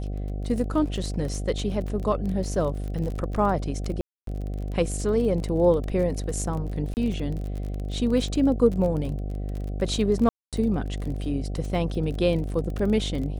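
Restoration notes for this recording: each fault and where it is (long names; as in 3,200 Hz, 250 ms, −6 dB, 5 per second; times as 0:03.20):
mains buzz 50 Hz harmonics 15 −30 dBFS
surface crackle 29 per second −31 dBFS
0:04.01–0:04.27: drop-out 263 ms
0:06.94–0:06.97: drop-out 29 ms
0:10.29–0:10.53: drop-out 237 ms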